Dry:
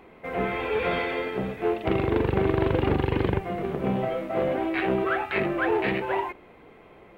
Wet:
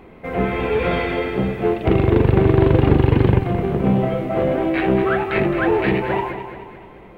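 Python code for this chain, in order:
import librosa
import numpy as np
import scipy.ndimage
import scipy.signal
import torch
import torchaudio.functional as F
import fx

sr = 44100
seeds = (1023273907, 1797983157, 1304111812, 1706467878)

p1 = fx.low_shelf(x, sr, hz=280.0, db=9.5)
p2 = p1 + fx.echo_feedback(p1, sr, ms=216, feedback_pct=48, wet_db=-9.5, dry=0)
y = p2 * librosa.db_to_amplitude(3.5)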